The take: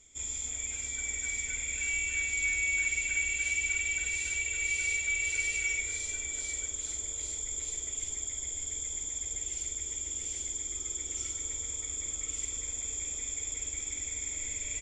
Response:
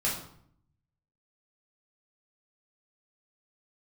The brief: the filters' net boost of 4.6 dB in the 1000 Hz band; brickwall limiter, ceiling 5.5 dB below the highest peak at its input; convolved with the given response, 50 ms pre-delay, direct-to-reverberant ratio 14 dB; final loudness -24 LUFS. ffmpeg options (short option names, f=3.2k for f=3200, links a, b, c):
-filter_complex "[0:a]equalizer=f=1k:t=o:g=6,alimiter=limit=-23.5dB:level=0:latency=1,asplit=2[a][b];[1:a]atrim=start_sample=2205,adelay=50[c];[b][c]afir=irnorm=-1:irlink=0,volume=-22dB[d];[a][d]amix=inputs=2:normalize=0,volume=7.5dB"